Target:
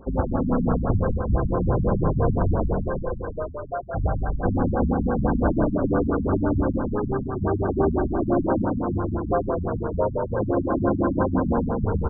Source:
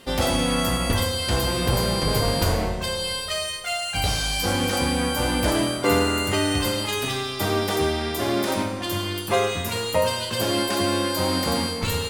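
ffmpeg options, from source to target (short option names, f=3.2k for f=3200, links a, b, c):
-filter_complex "[0:a]lowpass=3.2k,alimiter=limit=-13.5dB:level=0:latency=1:release=445,asplit=2[a][b];[b]asplit=8[c][d][e][f][g][h][i][j];[c]adelay=179,afreqshift=-30,volume=-5dB[k];[d]adelay=358,afreqshift=-60,volume=-9.4dB[l];[e]adelay=537,afreqshift=-90,volume=-13.9dB[m];[f]adelay=716,afreqshift=-120,volume=-18.3dB[n];[g]adelay=895,afreqshift=-150,volume=-22.7dB[o];[h]adelay=1074,afreqshift=-180,volume=-27.2dB[p];[i]adelay=1253,afreqshift=-210,volume=-31.6dB[q];[j]adelay=1432,afreqshift=-240,volume=-36.1dB[r];[k][l][m][n][o][p][q][r]amix=inputs=8:normalize=0[s];[a][s]amix=inputs=2:normalize=0,aeval=exprs='val(0)+0.00251*(sin(2*PI*60*n/s)+sin(2*PI*2*60*n/s)/2+sin(2*PI*3*60*n/s)/3+sin(2*PI*4*60*n/s)/4+sin(2*PI*5*60*n/s)/5)':c=same,asplit=2[t][u];[u]asetrate=33038,aresample=44100,atempo=1.33484,volume=-10dB[v];[t][v]amix=inputs=2:normalize=0,afftfilt=real='re*lt(b*sr/1024,240*pow(1700/240,0.5+0.5*sin(2*PI*5.9*pts/sr)))':imag='im*lt(b*sr/1024,240*pow(1700/240,0.5+0.5*sin(2*PI*5.9*pts/sr)))':win_size=1024:overlap=0.75,volume=2.5dB"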